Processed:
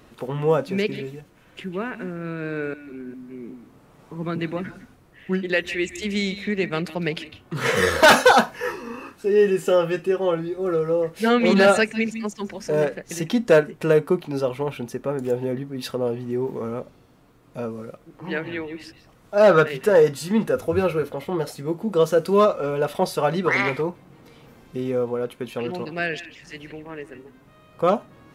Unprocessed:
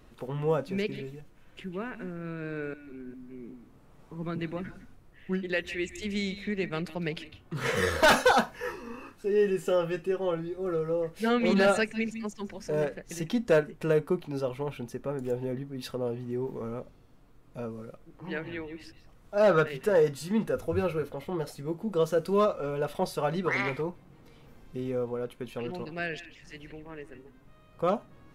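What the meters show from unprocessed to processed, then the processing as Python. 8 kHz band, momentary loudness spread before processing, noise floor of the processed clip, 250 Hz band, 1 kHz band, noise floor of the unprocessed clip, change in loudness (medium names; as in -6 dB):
+8.0 dB, 18 LU, -54 dBFS, +7.0 dB, +8.0 dB, -56 dBFS, +7.5 dB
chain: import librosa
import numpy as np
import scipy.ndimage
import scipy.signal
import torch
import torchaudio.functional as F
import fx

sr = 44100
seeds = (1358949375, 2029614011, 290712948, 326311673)

y = fx.highpass(x, sr, hz=130.0, slope=6)
y = y * librosa.db_to_amplitude(8.0)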